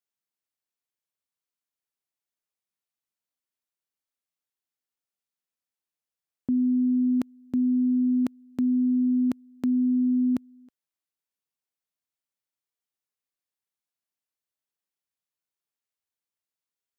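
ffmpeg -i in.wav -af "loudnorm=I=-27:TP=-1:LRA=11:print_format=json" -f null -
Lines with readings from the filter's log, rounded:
"input_i" : "-24.8",
"input_tp" : "-18.5",
"input_lra" : "6.0",
"input_thresh" : "-35.2",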